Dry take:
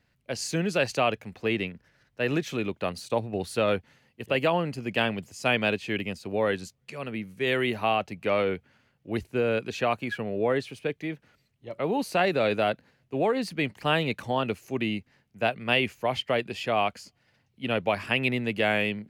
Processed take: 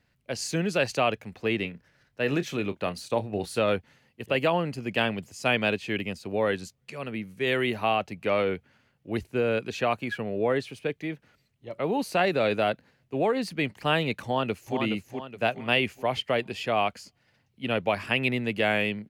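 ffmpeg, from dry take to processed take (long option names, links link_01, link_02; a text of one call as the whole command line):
ffmpeg -i in.wav -filter_complex "[0:a]asettb=1/sr,asplit=3[link_01][link_02][link_03];[link_01]atrim=end=1.614[link_04];[link_02]atrim=start=1.61:end=3.6,asetpts=PTS-STARTPTS,afade=type=in:duration=0.004:curve=qsin,afade=type=out:start_time=1.986:duration=0.004:curve=qsin,asplit=2[link_05][link_06];[link_06]adelay=29,volume=-13dB[link_07];[link_05][link_07]amix=inputs=2:normalize=0,atrim=end_sample=87759[link_08];[link_03]atrim=start=3.596[link_09];[link_04][link_08]acrossfade=duration=0.004:curve1=hsin:curve2=qsin[link_10];[link_10][link_09]acrossfade=duration=0.004:curve1=qsin:curve2=hsin,asplit=2[link_11][link_12];[link_12]afade=type=in:start_time=14.24:duration=0.01,afade=type=out:start_time=14.78:duration=0.01,aecho=0:1:420|840|1260|1680|2100:0.530884|0.212354|0.0849415|0.0339766|0.0135906[link_13];[link_11][link_13]amix=inputs=2:normalize=0" out.wav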